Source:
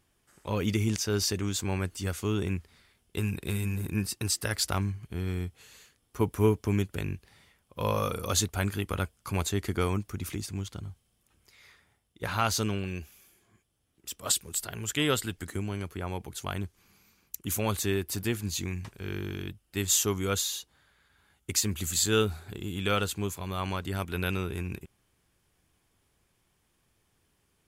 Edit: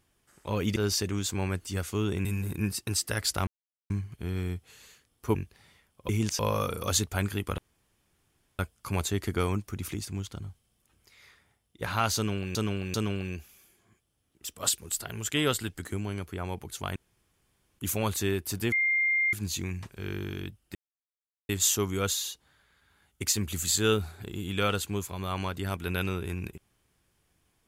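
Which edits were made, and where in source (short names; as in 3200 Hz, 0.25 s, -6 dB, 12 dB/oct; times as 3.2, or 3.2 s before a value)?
0.76–1.06 move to 7.81
2.55–3.59 cut
4.81 insert silence 0.43 s
6.26–7.07 cut
9 insert room tone 1.01 s
12.57–12.96 loop, 3 plays
16.59–17.42 room tone
18.35 add tone 2110 Hz -22.5 dBFS 0.61 s
19.77 insert silence 0.74 s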